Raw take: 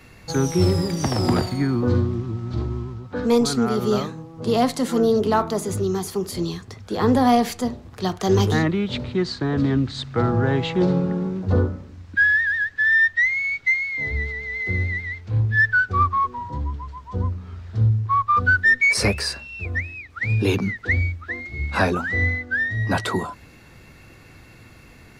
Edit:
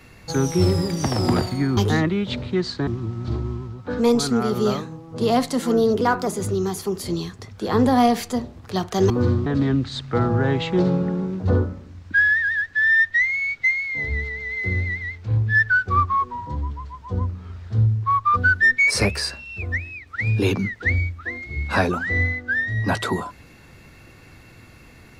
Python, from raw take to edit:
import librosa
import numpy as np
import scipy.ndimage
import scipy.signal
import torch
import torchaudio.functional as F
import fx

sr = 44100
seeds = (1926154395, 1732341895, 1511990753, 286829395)

y = fx.edit(x, sr, fx.swap(start_s=1.77, length_s=0.36, other_s=8.39, other_length_s=1.1),
    fx.speed_span(start_s=5.27, length_s=0.29, speed=1.11), tone=tone)